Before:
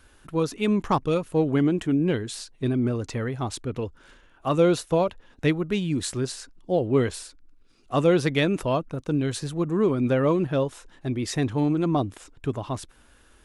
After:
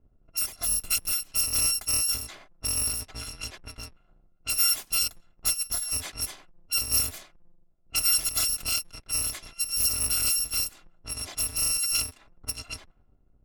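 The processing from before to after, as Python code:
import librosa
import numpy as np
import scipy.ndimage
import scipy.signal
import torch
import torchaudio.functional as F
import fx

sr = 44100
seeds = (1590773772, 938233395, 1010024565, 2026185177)

y = fx.bit_reversed(x, sr, seeds[0], block=256)
y = fx.env_lowpass(y, sr, base_hz=430.0, full_db=-22.0)
y = y * librosa.db_to_amplitude(-2.5)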